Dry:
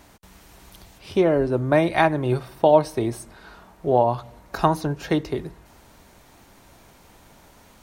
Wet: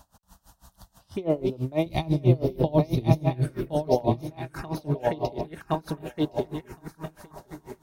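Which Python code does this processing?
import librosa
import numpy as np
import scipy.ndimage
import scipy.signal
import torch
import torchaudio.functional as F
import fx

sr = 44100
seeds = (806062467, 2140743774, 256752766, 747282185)

y = fx.reverse_delay_fb(x, sr, ms=666, feedback_pct=56, wet_db=-9)
y = fx.bass_treble(y, sr, bass_db=15, treble_db=10, at=(1.86, 3.15))
y = fx.rider(y, sr, range_db=3, speed_s=0.5)
y = fx.env_phaser(y, sr, low_hz=360.0, high_hz=1600.0, full_db=-17.5)
y = np.clip(y, -10.0 ** (-7.0 / 20.0), 10.0 ** (-7.0 / 20.0))
y = fx.echo_feedback(y, sr, ms=1066, feedback_pct=17, wet_db=-3.5)
y = y * 10.0 ** (-24 * (0.5 - 0.5 * np.cos(2.0 * np.pi * 6.1 * np.arange(len(y)) / sr)) / 20.0)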